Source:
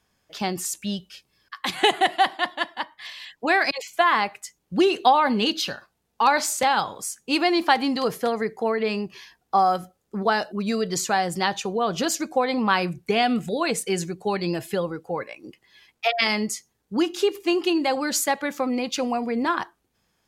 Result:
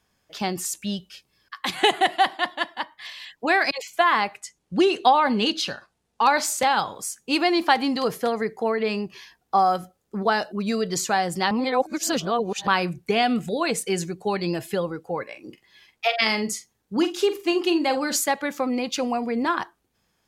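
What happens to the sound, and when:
0:04.37–0:06.24: low-pass filter 11,000 Hz 24 dB per octave
0:11.51–0:12.67: reverse
0:15.24–0:18.16: double-tracking delay 45 ms −10 dB

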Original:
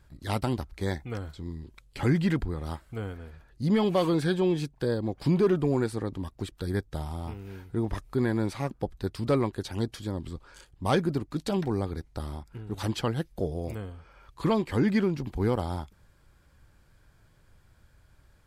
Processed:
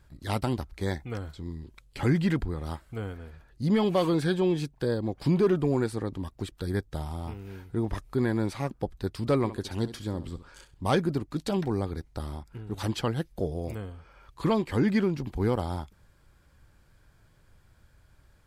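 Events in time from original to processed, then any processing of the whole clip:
0:09.37–0:10.86: flutter between parallel walls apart 11.5 metres, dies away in 0.3 s

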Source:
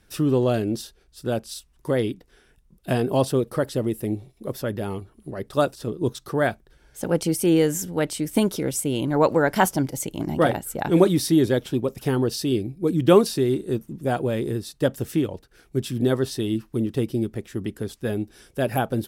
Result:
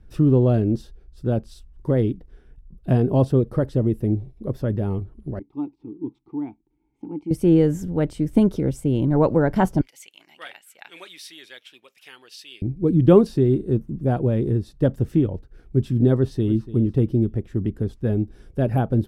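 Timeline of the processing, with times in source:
0:05.39–0:07.31: formant filter u
0:09.81–0:12.62: high-pass with resonance 2,500 Hz, resonance Q 2.2
0:16.15–0:16.71: delay throw 290 ms, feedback 30%, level −15.5 dB
whole clip: spectral tilt −4 dB per octave; level −4 dB

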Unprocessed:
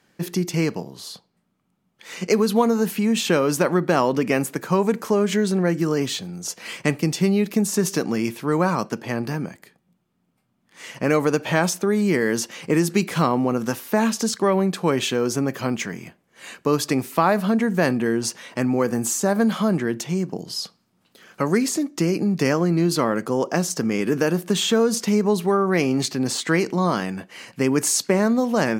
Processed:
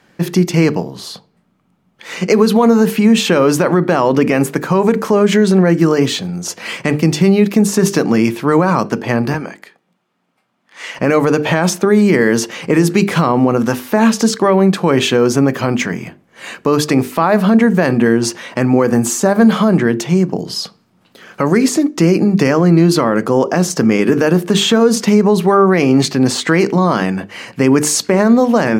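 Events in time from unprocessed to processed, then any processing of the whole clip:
0:09.34–0:10.99: meter weighting curve A
whole clip: high-shelf EQ 4,400 Hz −8.5 dB; mains-hum notches 50/100/150/200/250/300/350/400/450 Hz; boost into a limiter +12.5 dB; level −1 dB

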